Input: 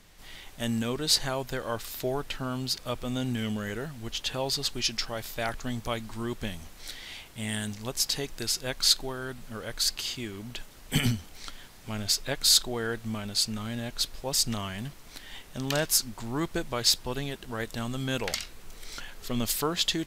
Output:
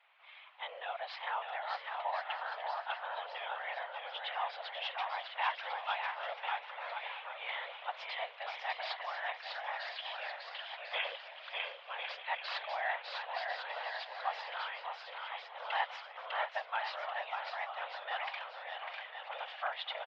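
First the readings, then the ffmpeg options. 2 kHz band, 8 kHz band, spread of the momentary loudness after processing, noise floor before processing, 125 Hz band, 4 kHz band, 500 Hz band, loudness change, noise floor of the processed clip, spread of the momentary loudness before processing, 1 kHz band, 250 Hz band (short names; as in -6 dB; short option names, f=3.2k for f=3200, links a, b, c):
-0.5 dB, under -40 dB, 7 LU, -49 dBFS, under -40 dB, -14.0 dB, -9.0 dB, -10.0 dB, -52 dBFS, 17 LU, +3.0 dB, under -40 dB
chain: -filter_complex "[0:a]dynaudnorm=f=410:g=21:m=3.5dB,asplit=2[a][b];[b]aecho=0:1:600|1050|1388|1641|1830:0.631|0.398|0.251|0.158|0.1[c];[a][c]amix=inputs=2:normalize=0,aeval=exprs='clip(val(0),-1,0.126)':c=same,afftfilt=real='hypot(re,im)*cos(2*PI*random(0))':imag='hypot(re,im)*sin(2*PI*random(1))':win_size=512:overlap=0.75,asplit=2[d][e];[e]aecho=0:1:645:0.224[f];[d][f]amix=inputs=2:normalize=0,highpass=f=430:t=q:w=0.5412,highpass=f=430:t=q:w=1.307,lowpass=f=2.9k:t=q:w=0.5176,lowpass=f=2.9k:t=q:w=0.7071,lowpass=f=2.9k:t=q:w=1.932,afreqshift=250,volume=1dB"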